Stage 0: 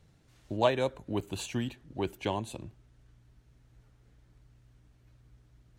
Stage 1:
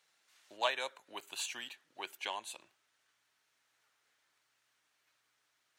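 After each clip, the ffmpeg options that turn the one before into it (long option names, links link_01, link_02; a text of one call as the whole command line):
ffmpeg -i in.wav -af "highpass=1200,volume=1dB" out.wav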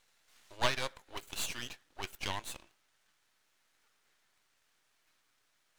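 ffmpeg -i in.wav -af "aeval=exprs='max(val(0),0)':channel_layout=same,volume=6.5dB" out.wav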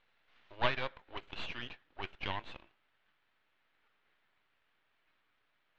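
ffmpeg -i in.wav -af "lowpass=frequency=3300:width=0.5412,lowpass=frequency=3300:width=1.3066" out.wav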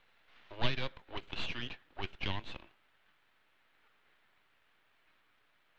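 ffmpeg -i in.wav -filter_complex "[0:a]acrossover=split=350|3000[link_01][link_02][link_03];[link_02]acompressor=threshold=-51dB:ratio=2.5[link_04];[link_01][link_04][link_03]amix=inputs=3:normalize=0,volume=5.5dB" out.wav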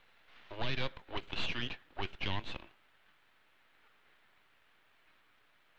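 ffmpeg -i in.wav -af "alimiter=level_in=2.5dB:limit=-24dB:level=0:latency=1:release=17,volume=-2.5dB,volume=3dB" out.wav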